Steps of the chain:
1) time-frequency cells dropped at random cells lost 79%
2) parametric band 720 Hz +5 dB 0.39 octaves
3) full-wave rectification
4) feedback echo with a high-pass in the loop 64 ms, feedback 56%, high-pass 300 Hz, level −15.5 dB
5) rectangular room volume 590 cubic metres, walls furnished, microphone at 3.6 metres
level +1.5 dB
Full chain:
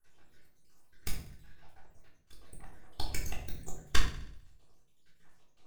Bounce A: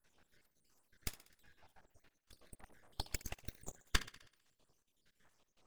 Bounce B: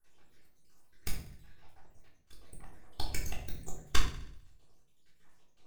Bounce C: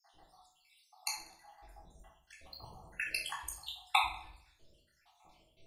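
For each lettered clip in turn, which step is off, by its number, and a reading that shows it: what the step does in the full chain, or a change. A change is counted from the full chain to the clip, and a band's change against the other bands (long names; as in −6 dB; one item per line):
5, change in crest factor +11.5 dB
2, 2 kHz band −1.5 dB
3, change in crest factor +9.5 dB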